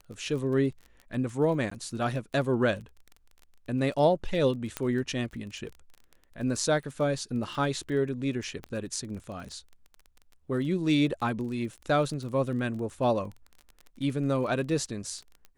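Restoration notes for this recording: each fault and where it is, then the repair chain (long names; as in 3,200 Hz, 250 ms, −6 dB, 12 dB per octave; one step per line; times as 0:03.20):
surface crackle 22 per second −37 dBFS
0:01.70–0:01.71: drop-out 14 ms
0:04.77: click −14 dBFS
0:08.64: click −25 dBFS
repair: click removal
repair the gap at 0:01.70, 14 ms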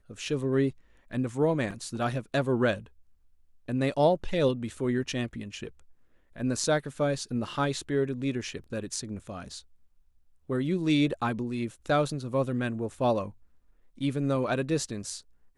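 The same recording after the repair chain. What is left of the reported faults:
0:08.64: click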